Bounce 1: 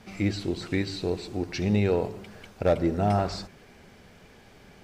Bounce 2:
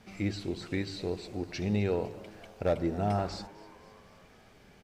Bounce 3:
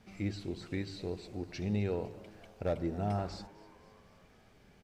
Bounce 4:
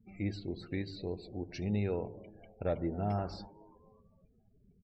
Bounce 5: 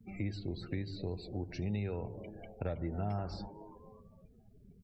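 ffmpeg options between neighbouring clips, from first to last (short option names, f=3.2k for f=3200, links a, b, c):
-filter_complex "[0:a]asplit=6[a][b][c][d][e][f];[b]adelay=256,afreqshift=110,volume=-21dB[g];[c]adelay=512,afreqshift=220,volume=-25.6dB[h];[d]adelay=768,afreqshift=330,volume=-30.2dB[i];[e]adelay=1024,afreqshift=440,volume=-34.7dB[j];[f]adelay=1280,afreqshift=550,volume=-39.3dB[k];[a][g][h][i][j][k]amix=inputs=6:normalize=0,volume=-5.5dB"
-af "lowshelf=f=250:g=4,volume=-6dB"
-af "afftdn=nr=36:nf=-53"
-filter_complex "[0:a]acrossover=split=150|1000[a][b][c];[a]acompressor=threshold=-44dB:ratio=4[d];[b]acompressor=threshold=-47dB:ratio=4[e];[c]acompressor=threshold=-57dB:ratio=4[f];[d][e][f]amix=inputs=3:normalize=0,volume=6.5dB"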